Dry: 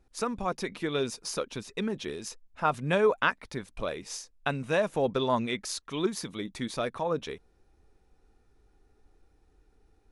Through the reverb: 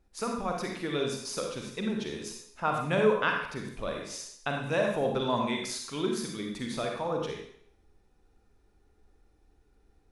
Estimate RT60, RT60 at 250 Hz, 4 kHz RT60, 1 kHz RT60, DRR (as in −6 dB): 0.65 s, 0.65 s, 0.65 s, 0.65 s, 1.0 dB